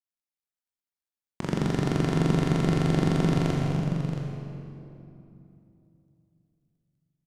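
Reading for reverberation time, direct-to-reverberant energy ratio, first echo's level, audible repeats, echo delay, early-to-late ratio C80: 3.0 s, -3.0 dB, -8.0 dB, 2, 0.26 s, -0.5 dB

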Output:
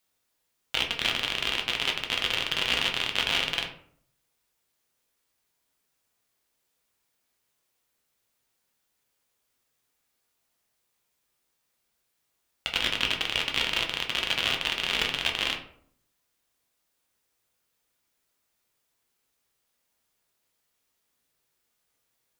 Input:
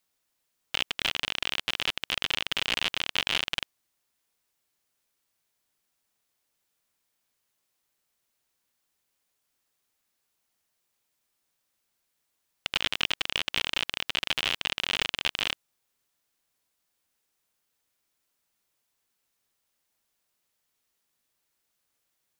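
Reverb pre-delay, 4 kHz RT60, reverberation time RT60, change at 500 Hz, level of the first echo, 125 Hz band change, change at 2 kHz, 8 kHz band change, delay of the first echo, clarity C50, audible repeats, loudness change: 5 ms, 0.35 s, 0.60 s, +4.0 dB, none, +3.5 dB, +2.0 dB, +1.5 dB, none, 8.5 dB, none, +2.0 dB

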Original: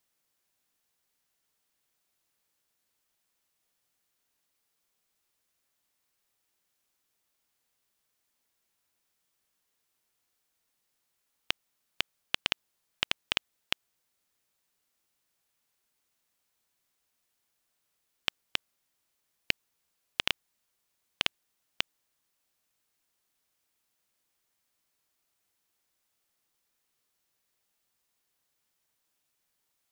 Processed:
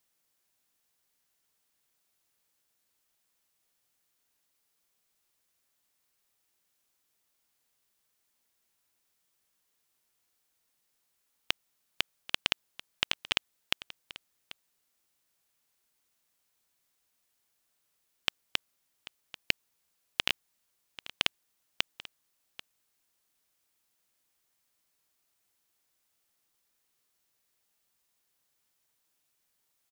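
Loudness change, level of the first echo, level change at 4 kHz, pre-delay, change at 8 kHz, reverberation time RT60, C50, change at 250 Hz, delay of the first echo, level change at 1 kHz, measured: +0.5 dB, -17.0 dB, +1.0 dB, none, +1.5 dB, none, none, 0.0 dB, 0.789 s, 0.0 dB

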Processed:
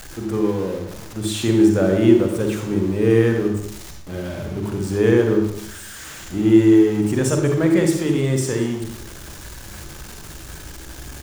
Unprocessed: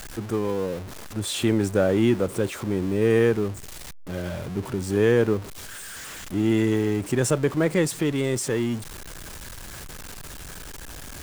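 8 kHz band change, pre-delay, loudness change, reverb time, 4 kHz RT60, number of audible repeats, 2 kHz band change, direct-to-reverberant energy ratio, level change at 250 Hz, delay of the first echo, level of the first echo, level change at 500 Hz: +2.0 dB, 40 ms, +5.5 dB, 0.65 s, 0.70 s, 1, +1.5 dB, 3.0 dB, +7.5 dB, 0.199 s, -16.5 dB, +4.0 dB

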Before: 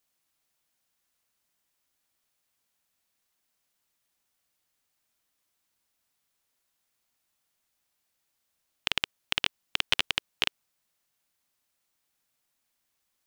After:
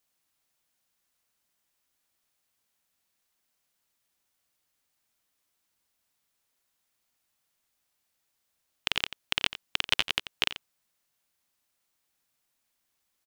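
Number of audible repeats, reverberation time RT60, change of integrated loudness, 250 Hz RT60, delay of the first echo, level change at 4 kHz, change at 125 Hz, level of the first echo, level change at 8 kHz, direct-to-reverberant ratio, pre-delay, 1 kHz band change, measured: 1, none, 0.0 dB, none, 88 ms, 0.0 dB, 0.0 dB, -13.0 dB, 0.0 dB, none, none, 0.0 dB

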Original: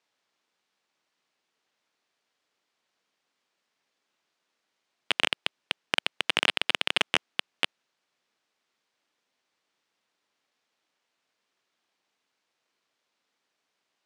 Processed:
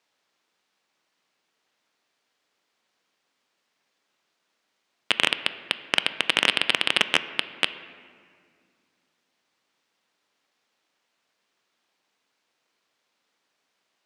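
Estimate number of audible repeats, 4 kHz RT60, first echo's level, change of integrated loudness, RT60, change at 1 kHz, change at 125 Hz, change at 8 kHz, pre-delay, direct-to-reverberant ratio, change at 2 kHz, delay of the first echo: none, 1.3 s, none, +4.0 dB, 2.1 s, +3.5 dB, +4.5 dB, +4.0 dB, 3 ms, 11.5 dB, +4.5 dB, none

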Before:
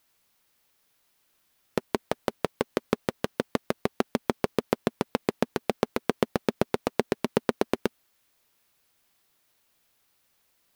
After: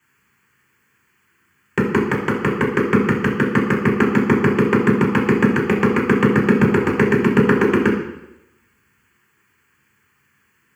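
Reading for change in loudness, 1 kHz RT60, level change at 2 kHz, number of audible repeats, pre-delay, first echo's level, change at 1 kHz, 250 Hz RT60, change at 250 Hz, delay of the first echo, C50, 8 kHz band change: +13.0 dB, 0.90 s, +17.0 dB, none, 3 ms, none, +10.0 dB, 0.90 s, +15.5 dB, none, 5.0 dB, n/a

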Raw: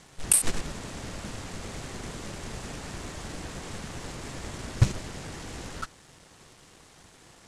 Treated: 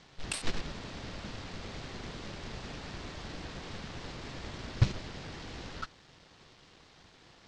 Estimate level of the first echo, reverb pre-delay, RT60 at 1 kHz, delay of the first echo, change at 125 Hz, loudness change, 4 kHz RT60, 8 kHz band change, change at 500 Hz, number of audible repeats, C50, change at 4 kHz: none, none, none, none, -4.5 dB, -8.0 dB, none, -18.5 dB, -4.5 dB, none, none, -2.0 dB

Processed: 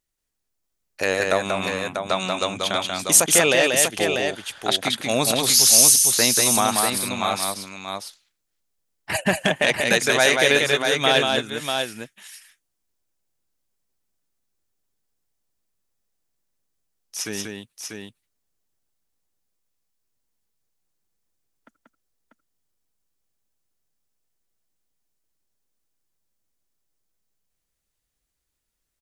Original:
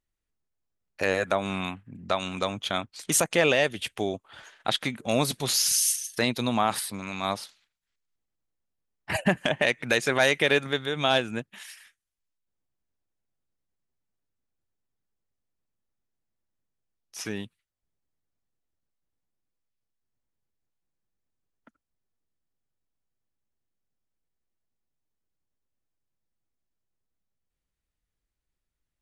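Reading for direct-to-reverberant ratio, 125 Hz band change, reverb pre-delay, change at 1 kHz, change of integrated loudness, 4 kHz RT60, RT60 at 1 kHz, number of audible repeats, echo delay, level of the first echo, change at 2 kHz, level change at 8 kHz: none, +1.5 dB, none, +5.5 dB, +7.5 dB, none, none, 2, 0.186 s, -3.5 dB, +6.0 dB, +12.0 dB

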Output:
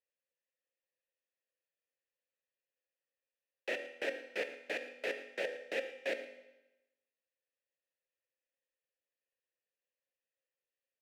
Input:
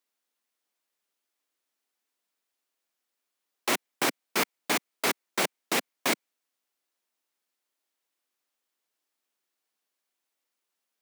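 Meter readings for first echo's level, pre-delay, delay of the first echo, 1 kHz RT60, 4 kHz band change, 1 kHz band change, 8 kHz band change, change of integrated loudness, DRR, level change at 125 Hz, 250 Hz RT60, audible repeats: -16.0 dB, 8 ms, 0.113 s, 1.0 s, -15.0 dB, -19.5 dB, -26.0 dB, -10.5 dB, 7.0 dB, under -20 dB, 1.0 s, 1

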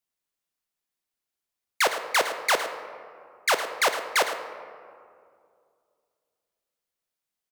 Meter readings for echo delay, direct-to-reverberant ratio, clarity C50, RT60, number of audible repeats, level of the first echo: 0.109 s, 6.5 dB, 7.5 dB, 2.3 s, 1, -11.5 dB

